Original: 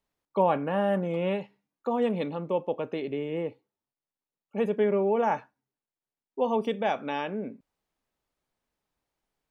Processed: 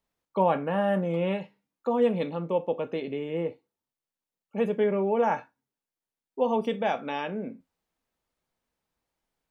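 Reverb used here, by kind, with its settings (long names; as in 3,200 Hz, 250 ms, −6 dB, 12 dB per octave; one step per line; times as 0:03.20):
reverb whose tail is shaped and stops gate 90 ms falling, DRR 10 dB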